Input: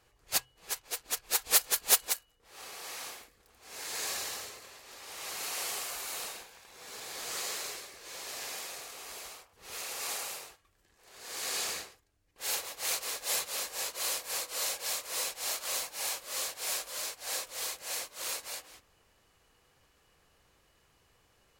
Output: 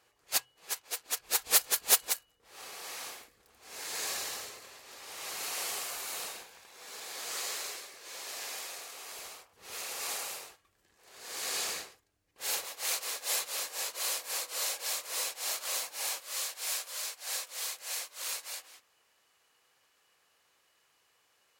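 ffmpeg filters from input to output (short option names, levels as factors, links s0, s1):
-af "asetnsamples=n=441:p=0,asendcmd='1.2 highpass f 90;6.68 highpass f 360;9.19 highpass f 110;12.64 highpass f 390;16.2 highpass f 960',highpass=f=350:p=1"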